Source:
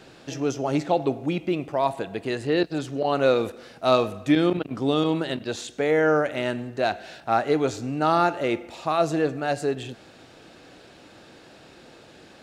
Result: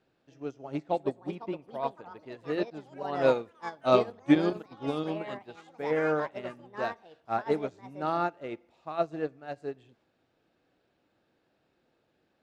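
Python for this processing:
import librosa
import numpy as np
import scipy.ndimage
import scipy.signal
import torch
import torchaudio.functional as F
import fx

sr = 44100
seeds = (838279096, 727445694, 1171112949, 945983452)

y = fx.echo_pitch(x, sr, ms=732, semitones=5, count=3, db_per_echo=-6.0)
y = fx.lowpass(y, sr, hz=2500.0, slope=6)
y = fx.upward_expand(y, sr, threshold_db=-30.0, expansion=2.5)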